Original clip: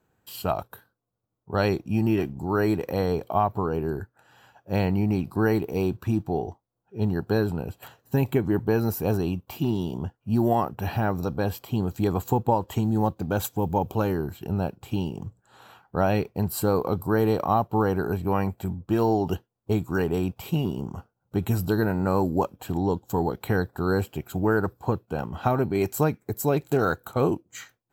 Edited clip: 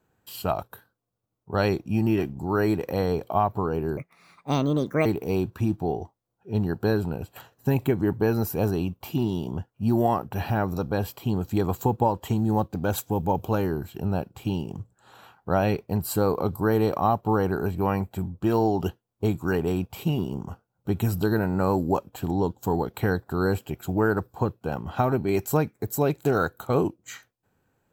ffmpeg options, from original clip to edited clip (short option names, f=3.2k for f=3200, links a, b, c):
-filter_complex "[0:a]asplit=3[a][b][c];[a]atrim=end=3.974[d];[b]atrim=start=3.97:end=5.52,asetpts=PTS-STARTPTS,asetrate=63063,aresample=44100[e];[c]atrim=start=5.516[f];[d][e]acrossfade=d=0.004:c1=hsin:c2=hsin[g];[g][f]acrossfade=d=0.004:c1=hsin:c2=hsin"